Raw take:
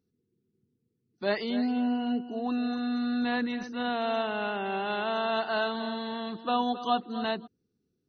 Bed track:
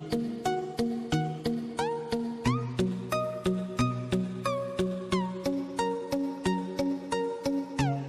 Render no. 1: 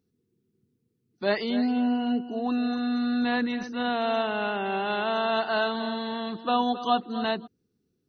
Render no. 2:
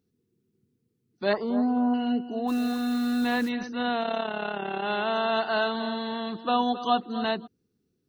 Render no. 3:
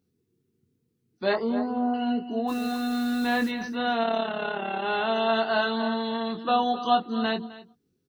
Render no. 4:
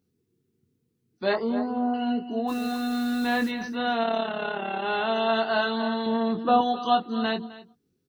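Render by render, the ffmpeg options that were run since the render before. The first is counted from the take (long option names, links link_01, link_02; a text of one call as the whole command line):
ffmpeg -i in.wav -af "volume=3dB" out.wav
ffmpeg -i in.wav -filter_complex "[0:a]asettb=1/sr,asplit=3[link_01][link_02][link_03];[link_01]atrim=end=1.334[link_04];[link_02]atrim=start=1.33:end=1.94,asetpts=PTS-STARTPTS,afade=type=in:duration=0.004:curve=qsin,afade=type=out:start_time=0.606:duration=0.004:curve=qsin,highshelf=frequency=1600:width_type=q:width=3:gain=-12.5[link_05];[link_03]atrim=start=1.936[link_06];[link_04][link_05]acrossfade=duration=0.004:curve1=hsin:curve2=qsin[link_07];[link_07][link_06]acrossfade=duration=0.004:curve1=qsin:curve2=hsin,asplit=3[link_08][link_09][link_10];[link_08]afade=type=out:start_time=2.47:duration=0.02[link_11];[link_09]acrusher=bits=8:dc=4:mix=0:aa=0.000001,afade=type=in:start_time=2.47:duration=0.02,afade=type=out:start_time=3.48:duration=0.02[link_12];[link_10]afade=type=in:start_time=3.48:duration=0.02[link_13];[link_11][link_12][link_13]amix=inputs=3:normalize=0,asplit=3[link_14][link_15][link_16];[link_14]afade=type=out:start_time=4.01:duration=0.02[link_17];[link_15]tremolo=f=35:d=0.71,afade=type=in:start_time=4.01:duration=0.02,afade=type=out:start_time=4.82:duration=0.02[link_18];[link_16]afade=type=in:start_time=4.82:duration=0.02[link_19];[link_17][link_18][link_19]amix=inputs=3:normalize=0" out.wav
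ffmpeg -i in.wav -filter_complex "[0:a]asplit=2[link_01][link_02];[link_02]adelay=22,volume=-5dB[link_03];[link_01][link_03]amix=inputs=2:normalize=0,aecho=1:1:259:0.126" out.wav
ffmpeg -i in.wav -filter_complex "[0:a]asettb=1/sr,asplit=3[link_01][link_02][link_03];[link_01]atrim=end=6.064[link_04];[link_02]atrim=start=6.06:end=6.61,asetpts=PTS-STARTPTS,afade=type=in:duration=0.004:curve=qsin,afade=type=out:start_time=0.546:duration=0.004:curve=qsin,tiltshelf=frequency=1300:gain=6[link_05];[link_03]atrim=start=6.606[link_06];[link_04][link_05]acrossfade=duration=0.004:curve1=hsin:curve2=qsin[link_07];[link_07][link_06]acrossfade=duration=0.004:curve1=qsin:curve2=hsin" out.wav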